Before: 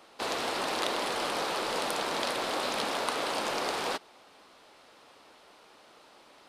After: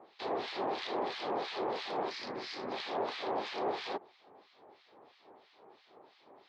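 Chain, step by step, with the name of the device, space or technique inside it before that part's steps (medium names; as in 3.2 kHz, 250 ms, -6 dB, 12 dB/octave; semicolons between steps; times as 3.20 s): 2.10–2.72 s: FFT filter 230 Hz 0 dB, 670 Hz -11 dB, 2.1 kHz 0 dB, 3.5 kHz -5 dB, 5 kHz +7 dB, 8.6 kHz 0 dB; guitar amplifier with harmonic tremolo (harmonic tremolo 3 Hz, depth 100%, crossover 1.5 kHz; saturation -28 dBFS, distortion -17 dB; cabinet simulation 100–4300 Hz, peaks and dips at 110 Hz +4 dB, 390 Hz +8 dB, 780 Hz +5 dB, 1.4 kHz -7 dB, 2.8 kHz -5 dB)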